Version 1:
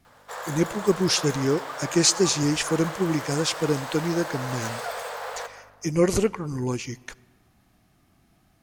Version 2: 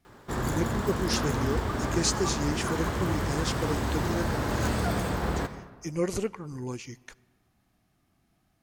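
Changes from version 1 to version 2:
speech −8.0 dB
background: remove Butterworth high-pass 450 Hz 96 dB per octave

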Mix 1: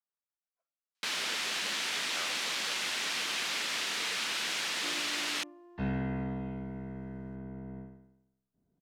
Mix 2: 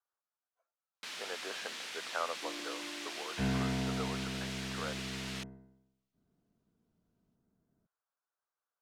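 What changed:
speech +9.5 dB
first sound −10.0 dB
second sound: entry −2.40 s

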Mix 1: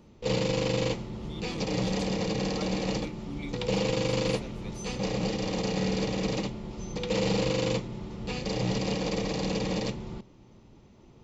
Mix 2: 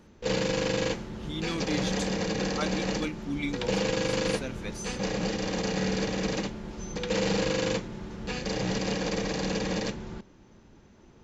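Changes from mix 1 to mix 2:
speech +8.0 dB
master: add thirty-one-band graphic EQ 125 Hz −6 dB, 1,600 Hz +12 dB, 6,300 Hz +4 dB

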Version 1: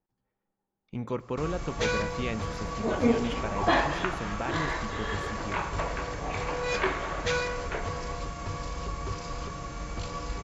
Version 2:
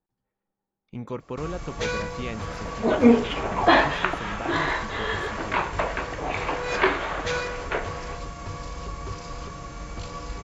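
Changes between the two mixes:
second sound +10.5 dB
reverb: off

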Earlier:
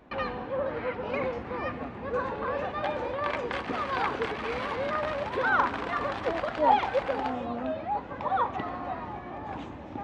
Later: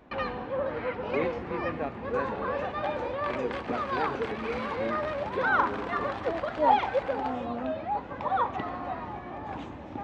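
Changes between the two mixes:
speech +9.0 dB
second sound −5.0 dB

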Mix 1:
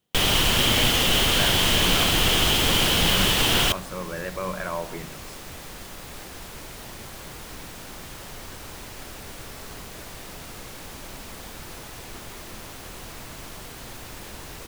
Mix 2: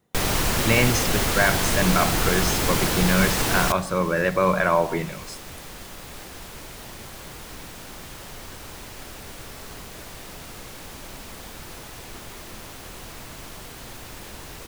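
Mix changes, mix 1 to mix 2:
speech +10.5 dB
first sound: add parametric band 3,100 Hz −14 dB 0.47 octaves

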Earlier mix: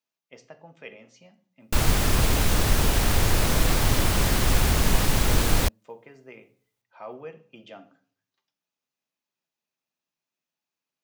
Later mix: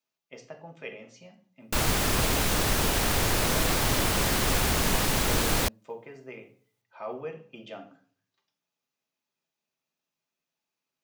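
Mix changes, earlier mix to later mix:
speech: send +6.0 dB
background: add low-shelf EQ 130 Hz −9.5 dB

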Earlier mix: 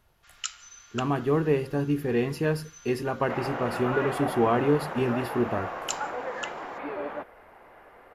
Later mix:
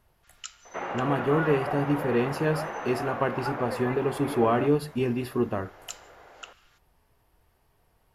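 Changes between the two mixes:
first sound −7.0 dB
second sound: entry −2.55 s

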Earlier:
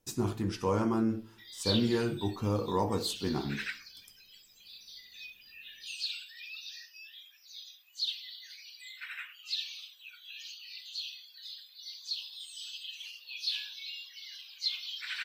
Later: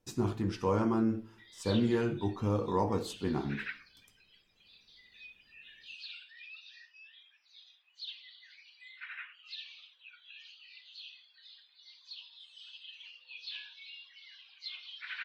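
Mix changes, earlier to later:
background: add low-pass filter 2,800 Hz 12 dB per octave
master: add high-shelf EQ 6,500 Hz −12 dB

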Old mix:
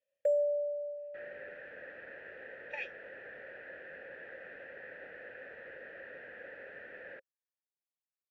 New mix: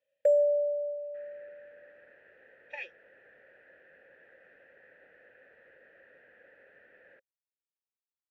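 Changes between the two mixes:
first sound +5.5 dB
second sound −10.5 dB

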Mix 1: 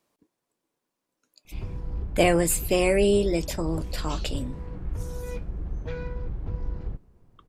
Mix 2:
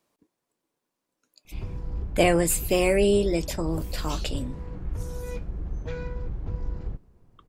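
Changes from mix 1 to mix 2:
first sound: remove low-pass filter 5,400 Hz
second sound: remove high-frequency loss of the air 84 metres

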